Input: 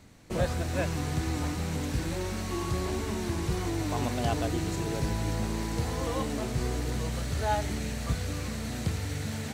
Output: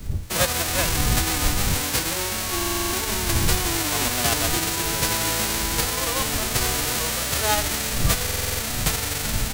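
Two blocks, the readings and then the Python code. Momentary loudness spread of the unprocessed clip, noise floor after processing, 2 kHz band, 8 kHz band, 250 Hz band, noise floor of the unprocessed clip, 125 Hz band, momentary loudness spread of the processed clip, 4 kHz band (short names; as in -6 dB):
4 LU, -27 dBFS, +12.5 dB, +18.0 dB, +2.0 dB, -35 dBFS, +2.5 dB, 3 LU, +16.0 dB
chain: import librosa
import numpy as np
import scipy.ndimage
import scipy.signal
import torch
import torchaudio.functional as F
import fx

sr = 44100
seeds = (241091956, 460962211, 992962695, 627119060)

y = fx.envelope_flatten(x, sr, power=0.3)
y = fx.dmg_wind(y, sr, seeds[0], corner_hz=84.0, level_db=-35.0)
y = fx.buffer_glitch(y, sr, at_s=(2.56, 8.24), block=2048, repeats=7)
y = y * 10.0 ** (6.0 / 20.0)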